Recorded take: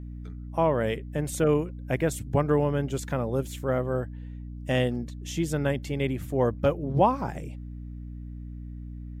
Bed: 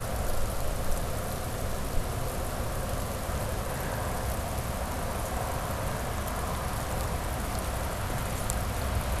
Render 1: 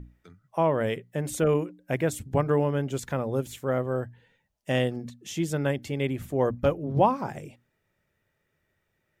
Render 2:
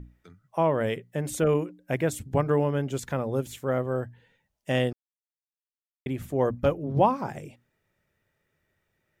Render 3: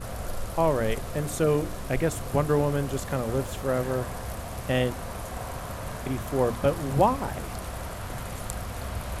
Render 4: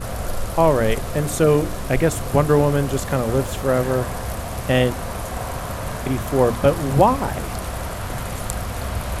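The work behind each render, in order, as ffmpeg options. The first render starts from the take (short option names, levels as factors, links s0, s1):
-af "bandreject=f=60:t=h:w=6,bandreject=f=120:t=h:w=6,bandreject=f=180:t=h:w=6,bandreject=f=240:t=h:w=6,bandreject=f=300:t=h:w=6"
-filter_complex "[0:a]asplit=3[s0][s1][s2];[s0]atrim=end=4.93,asetpts=PTS-STARTPTS,afade=t=out:st=4.926:d=0.004:c=hsin[s3];[s1]atrim=start=4.93:end=6.06,asetpts=PTS-STARTPTS,volume=0[s4];[s2]atrim=start=6.06,asetpts=PTS-STARTPTS,afade=t=in:d=0.004:c=hsin[s5];[s3][s4][s5]concat=n=3:v=0:a=1"
-filter_complex "[1:a]volume=0.668[s0];[0:a][s0]amix=inputs=2:normalize=0"
-af "volume=2.37,alimiter=limit=0.708:level=0:latency=1"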